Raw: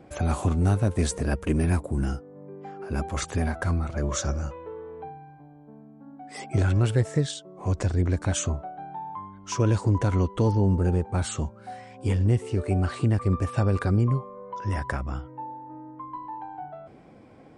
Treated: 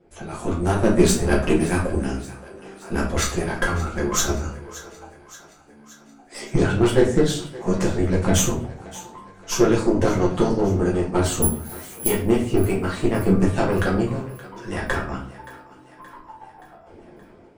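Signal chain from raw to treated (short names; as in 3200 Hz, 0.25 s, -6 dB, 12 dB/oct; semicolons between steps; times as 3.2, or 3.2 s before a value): harmonic-percussive split harmonic -17 dB; AGC gain up to 10 dB; flange 1.6 Hz, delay 1.6 ms, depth 5.2 ms, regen -41%; added harmonics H 6 -20 dB, 7 -30 dB, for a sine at -8.5 dBFS; 11.42–12.08 careless resampling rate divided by 4×, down none, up zero stuff; on a send: thinning echo 0.574 s, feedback 60%, high-pass 400 Hz, level -17 dB; on the sum: shoebox room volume 42 m³, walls mixed, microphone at 1 m; gain -1 dB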